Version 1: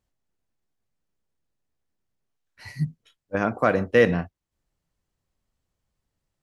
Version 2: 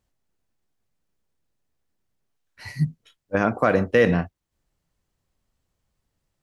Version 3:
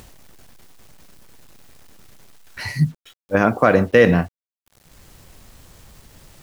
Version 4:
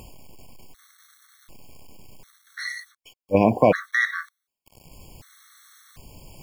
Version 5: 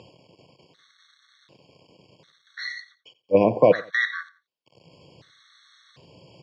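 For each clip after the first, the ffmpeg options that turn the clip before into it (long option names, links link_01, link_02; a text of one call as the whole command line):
ffmpeg -i in.wav -af "alimiter=limit=-9.5dB:level=0:latency=1:release=41,volume=3.5dB" out.wav
ffmpeg -i in.wav -filter_complex "[0:a]asplit=2[link_01][link_02];[link_02]acompressor=mode=upward:threshold=-23dB:ratio=2.5,volume=2.5dB[link_03];[link_01][link_03]amix=inputs=2:normalize=0,acrusher=bits=7:mix=0:aa=0.000001,volume=-2.5dB" out.wav
ffmpeg -i in.wav -af "areverse,acompressor=mode=upward:threshold=-38dB:ratio=2.5,areverse,afftfilt=real='re*gt(sin(2*PI*0.67*pts/sr)*(1-2*mod(floor(b*sr/1024/1100),2)),0)':imag='im*gt(sin(2*PI*0.67*pts/sr)*(1-2*mod(floor(b*sr/1024/1100),2)),0)':win_size=1024:overlap=0.75" out.wav
ffmpeg -i in.wav -af "highpass=frequency=120:width=0.5412,highpass=frequency=120:width=1.3066,equalizer=frequency=230:width_type=q:width=4:gain=-7,equalizer=frequency=510:width_type=q:width=4:gain=5,equalizer=frequency=790:width_type=q:width=4:gain=-6,equalizer=frequency=1300:width_type=q:width=4:gain=-5,equalizer=frequency=2400:width_type=q:width=4:gain=-5,equalizer=frequency=3700:width_type=q:width=4:gain=5,lowpass=frequency=4800:width=0.5412,lowpass=frequency=4800:width=1.3066,aecho=1:1:88|176:0.112|0.0303" out.wav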